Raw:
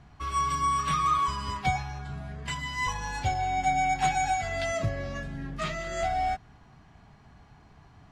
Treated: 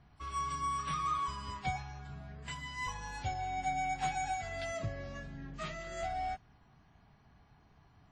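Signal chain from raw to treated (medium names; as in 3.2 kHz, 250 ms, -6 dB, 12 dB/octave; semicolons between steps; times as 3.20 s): trim -9 dB; WMA 32 kbps 48 kHz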